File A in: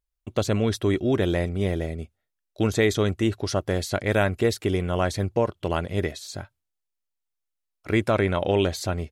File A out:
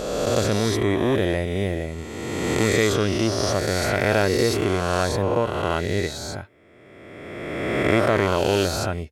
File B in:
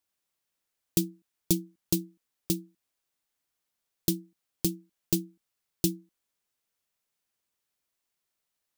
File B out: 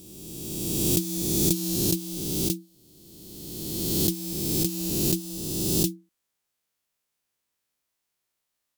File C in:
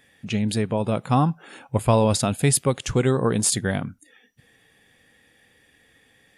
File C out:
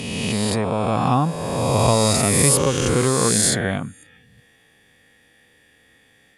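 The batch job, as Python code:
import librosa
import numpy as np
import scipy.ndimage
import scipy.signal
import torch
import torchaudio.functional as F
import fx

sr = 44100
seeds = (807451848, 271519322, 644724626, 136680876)

y = fx.spec_swells(x, sr, rise_s=2.12)
y = fx.cheby_harmonics(y, sr, harmonics=(2,), levels_db=(-42,), full_scale_db=-0.5)
y = F.gain(torch.from_numpy(y), -1.0).numpy()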